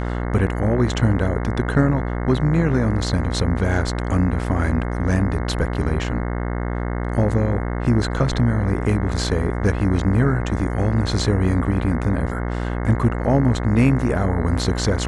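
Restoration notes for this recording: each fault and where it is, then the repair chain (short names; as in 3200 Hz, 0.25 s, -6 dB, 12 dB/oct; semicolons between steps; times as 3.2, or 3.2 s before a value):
buzz 60 Hz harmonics 36 -24 dBFS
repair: de-hum 60 Hz, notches 36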